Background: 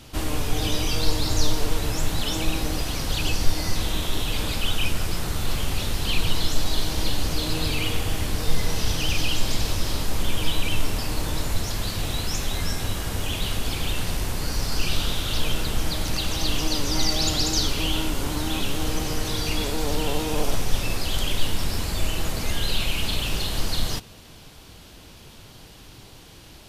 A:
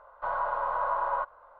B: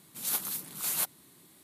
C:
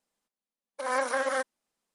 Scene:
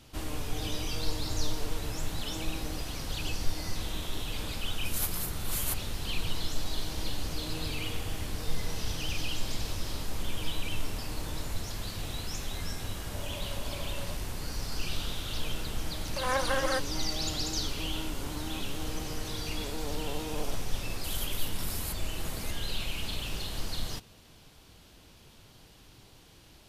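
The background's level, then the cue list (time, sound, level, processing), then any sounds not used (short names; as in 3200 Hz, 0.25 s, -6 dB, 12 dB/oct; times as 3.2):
background -9.5 dB
4.69 add B -2.5 dB + vocal rider
12.9 add A -6 dB + double band-pass 340 Hz, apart 1.5 oct
15.37 add C -1.5 dB
20.88 add B -10 dB + recorder AGC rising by 69 dB/s, up to +23 dB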